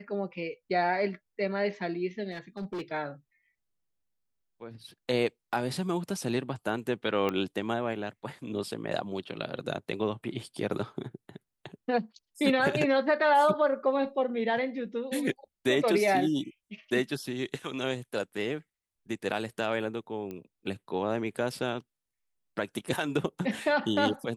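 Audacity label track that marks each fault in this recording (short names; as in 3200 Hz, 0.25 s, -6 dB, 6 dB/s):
2.310000	2.820000	clipped -32 dBFS
7.290000	7.290000	pop -17 dBFS
20.310000	20.310000	pop -26 dBFS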